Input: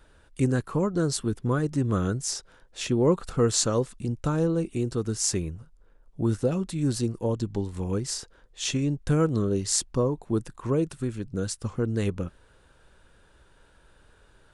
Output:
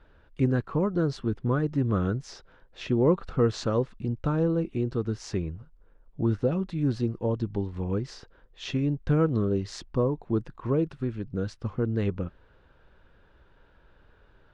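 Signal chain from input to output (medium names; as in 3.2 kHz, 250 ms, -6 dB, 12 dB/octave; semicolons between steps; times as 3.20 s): distance through air 260 m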